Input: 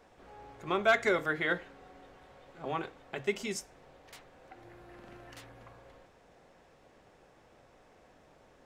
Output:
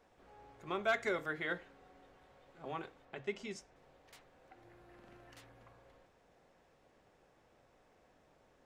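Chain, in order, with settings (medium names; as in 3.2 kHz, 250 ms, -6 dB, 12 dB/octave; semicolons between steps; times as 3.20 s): 3.05–3.76 s: distance through air 77 m; trim -7.5 dB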